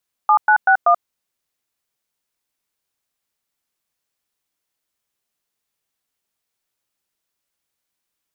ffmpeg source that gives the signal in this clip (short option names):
-f lavfi -i "aevalsrc='0.251*clip(min(mod(t,0.191),0.083-mod(t,0.191))/0.002,0,1)*(eq(floor(t/0.191),0)*(sin(2*PI*852*mod(t,0.191))+sin(2*PI*1209*mod(t,0.191)))+eq(floor(t/0.191),1)*(sin(2*PI*852*mod(t,0.191))+sin(2*PI*1477*mod(t,0.191)))+eq(floor(t/0.191),2)*(sin(2*PI*770*mod(t,0.191))+sin(2*PI*1477*mod(t,0.191)))+eq(floor(t/0.191),3)*(sin(2*PI*697*mod(t,0.191))+sin(2*PI*1209*mod(t,0.191))))':d=0.764:s=44100"